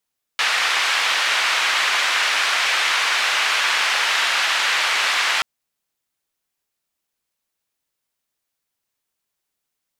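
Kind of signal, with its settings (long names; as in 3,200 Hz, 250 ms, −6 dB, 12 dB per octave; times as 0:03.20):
band-limited noise 1,200–2,700 Hz, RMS −19.5 dBFS 5.03 s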